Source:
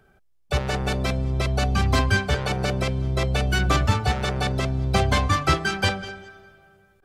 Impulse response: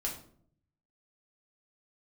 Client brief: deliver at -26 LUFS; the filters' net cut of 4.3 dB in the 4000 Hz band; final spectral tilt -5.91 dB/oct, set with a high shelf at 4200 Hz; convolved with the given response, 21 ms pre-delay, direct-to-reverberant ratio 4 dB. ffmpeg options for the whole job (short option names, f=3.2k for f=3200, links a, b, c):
-filter_complex "[0:a]equalizer=f=4k:t=o:g=-4,highshelf=f=4.2k:g=-3,asplit=2[a][b];[1:a]atrim=start_sample=2205,adelay=21[c];[b][c]afir=irnorm=-1:irlink=0,volume=-6dB[d];[a][d]amix=inputs=2:normalize=0,volume=-4dB"